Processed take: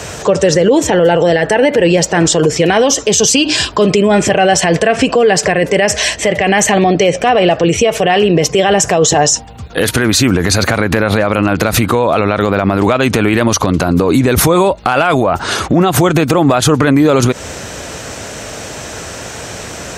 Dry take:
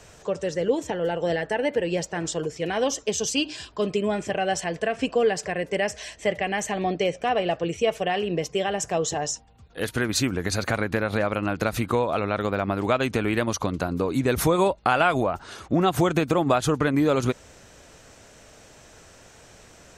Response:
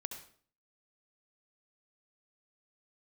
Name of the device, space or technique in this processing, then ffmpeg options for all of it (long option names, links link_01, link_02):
loud club master: -af "highpass=61,acompressor=threshold=-24dB:ratio=3,asoftclip=type=hard:threshold=-15.5dB,alimiter=level_in=25dB:limit=-1dB:release=50:level=0:latency=1,volume=-1dB"